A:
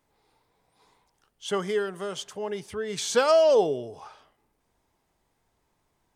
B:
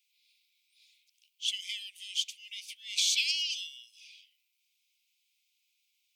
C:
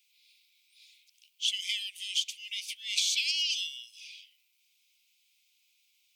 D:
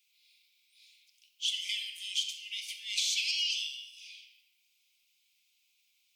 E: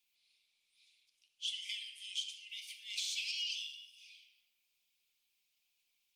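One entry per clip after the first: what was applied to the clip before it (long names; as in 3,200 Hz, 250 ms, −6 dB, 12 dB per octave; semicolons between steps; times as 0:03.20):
Butterworth high-pass 2,300 Hz 96 dB per octave; parametric band 9,200 Hz −9.5 dB 1.3 octaves; level +8.5 dB
downward compressor 10 to 1, threshold −31 dBFS, peak gain reduction 8 dB; level +6 dB
rectangular room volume 900 cubic metres, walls mixed, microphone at 1.1 metres; level −3.5 dB
level −6.5 dB; Opus 24 kbit/s 48,000 Hz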